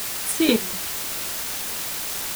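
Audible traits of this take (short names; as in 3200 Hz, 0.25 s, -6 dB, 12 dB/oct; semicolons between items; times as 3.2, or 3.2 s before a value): chopped level 4.1 Hz, depth 65%, duty 30%; a quantiser's noise floor 6-bit, dither triangular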